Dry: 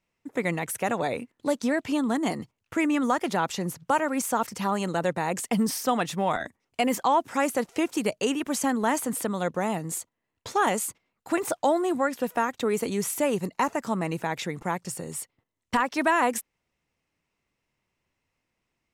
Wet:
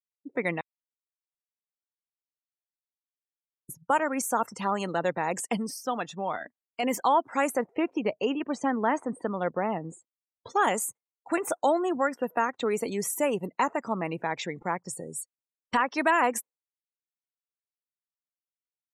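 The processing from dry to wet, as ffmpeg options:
-filter_complex "[0:a]asettb=1/sr,asplit=3[a][b][c];[a]atrim=end=7.574[d];[b]atrim=start=7.57:end=10.5,asetpts=PTS-STARTPTS,afade=t=in:d=0.004:c=qsin,afade=t=out:st=2.926:d=0.004:c=qsin,aemphasis=mode=reproduction:type=75fm[e];[c]atrim=start=10.496[f];[d][e]acrossfade=d=0.004:c1=hsin:c2=qsin[g];[g][f]acrossfade=d=0.004:c1=qsin:c2=hsin,asplit=5[h][i][j][k][l];[h]atrim=end=0.61,asetpts=PTS-STARTPTS,afade=t=out:st=0.606:d=0.004:c=hsin[m];[i]atrim=start=0.61:end=3.69,asetpts=PTS-STARTPTS,volume=0[n];[j]atrim=start=3.69:end=5.572,asetpts=PTS-STARTPTS,afade=t=in:d=0.004:c=hsin[o];[k]atrim=start=5.568:end=6.832,asetpts=PTS-STARTPTS,volume=-4.5dB[p];[l]atrim=start=6.828[q];[m][n][o]concat=n=3:v=0:a=1[r];[r][p]acrossfade=d=0.004:c1=hsin:c2=hsin[s];[s][q]acrossfade=d=0.004:c1=hsin:c2=hsin,afftdn=nr=34:nf=-40,lowshelf=f=160:g=-11.5"

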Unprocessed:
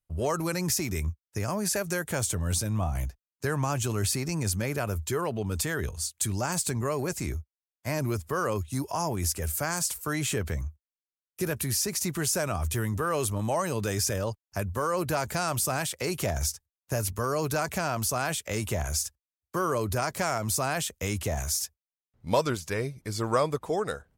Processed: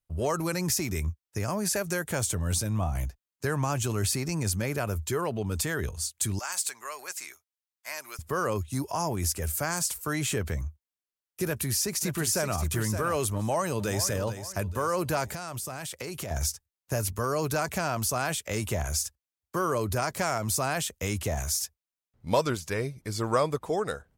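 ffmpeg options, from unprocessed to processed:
-filter_complex "[0:a]asettb=1/sr,asplit=3[a][b][c];[a]atrim=end=6.394[d];[b]atrim=start=6.39:end=8.19,asetpts=PTS-STARTPTS,afade=t=in:d=0.004:c=qsin,afade=t=out:st=1.796:d=0.004:c=qsin,highpass=1.2k[e];[c]atrim=start=8.186[f];[d][e]acrossfade=d=0.004:c1=hsin:c2=qsin[g];[g][f]acrossfade=d=0.004:c1=qsin:c2=hsin,asplit=2[h][i];[i]afade=t=in:st=11.45:d=0.01,afade=t=out:st=12.59:d=0.01,aecho=0:1:570|1140:0.375837|0.0563756[j];[h][j]amix=inputs=2:normalize=0,asplit=2[k][l];[l]afade=t=in:st=13.35:d=0.01,afade=t=out:st=14.08:d=0.01,aecho=0:1:440|880|1320|1760:0.281838|0.112735|0.0450941|0.0180377[m];[k][m]amix=inputs=2:normalize=0,asettb=1/sr,asplit=3[n][o][p];[n]atrim=end=15.274[q];[o]atrim=start=15.27:end=16.31,asetpts=PTS-STARTPTS,afade=t=in:d=0.004:c=qsin,afade=t=out:st=1.036:d=0.004:c=qsin,acompressor=threshold=-32dB:ratio=6:attack=3.2:release=140:knee=1:detection=peak[r];[p]atrim=start=16.306[s];[q][r]acrossfade=d=0.004:c1=hsin:c2=qsin[t];[t][s]acrossfade=d=0.004:c1=qsin:c2=hsin"

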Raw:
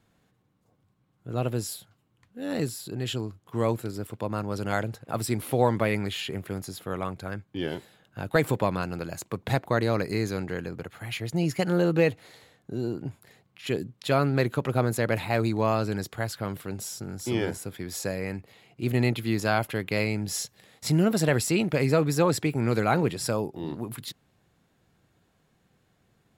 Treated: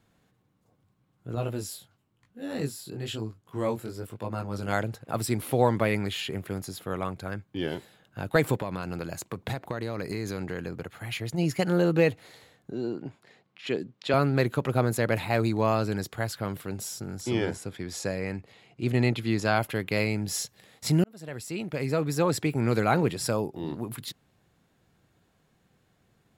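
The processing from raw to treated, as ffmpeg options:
-filter_complex "[0:a]asettb=1/sr,asplit=3[a][b][c];[a]atrim=end=1.354[d];[b]atrim=start=1.35:end=4.68,asetpts=PTS-STARTPTS,afade=t=in:d=0.004:c=qsin,afade=t=out:st=3.326:d=0.004:c=qsin,flanger=delay=17.5:depth=5.4:speed=1[e];[c]atrim=start=4.676[f];[d][e]acrossfade=d=0.004:c1=hsin:c2=qsin[g];[g][f]acrossfade=d=0.004:c1=qsin:c2=hsin,asplit=3[h][i][j];[h]afade=t=out:st=8.56:d=0.02[k];[i]acompressor=threshold=-27dB:ratio=6:attack=3.2:release=140:knee=1:detection=peak,afade=t=in:st=8.56:d=0.02,afade=t=out:st=11.37:d=0.02[l];[j]afade=t=in:st=11.37:d=0.02[m];[k][l][m]amix=inputs=3:normalize=0,asettb=1/sr,asplit=3[n][o][p];[n]atrim=end=12.714[q];[o]atrim=start=12.71:end=14.14,asetpts=PTS-STARTPTS,afade=t=in:d=0.004:c=qsin,afade=t=out:st=1.426:d=0.004:c=qsin,highpass=190,lowpass=5.3k[r];[p]atrim=start=14.136[s];[q][r]acrossfade=d=0.004:c1=hsin:c2=qsin[t];[t][s]acrossfade=d=0.004:c1=qsin:c2=hsin,asettb=1/sr,asplit=3[u][v][w];[u]atrim=end=17.214[x];[v]atrim=start=17.21:end=19.56,asetpts=PTS-STARTPTS,afade=t=in:d=0.004:c=qsin,afade=t=out:st=2.346:d=0.004:c=qsin,lowpass=8.5k[y];[w]atrim=start=19.556[z];[x][y]acrossfade=d=0.004:c1=hsin:c2=qsin[aa];[aa][z]acrossfade=d=0.004:c1=qsin:c2=hsin,asplit=2[ab][ac];[ab]atrim=end=21.04,asetpts=PTS-STARTPTS,afade=t=out:st=21.036:d=0.004:c=hsin[ad];[ac]atrim=start=21.04,asetpts=PTS-STARTPTS,afade=t=in:d=1.55[ae];[ad][ae]concat=n=2:v=0:a=1"

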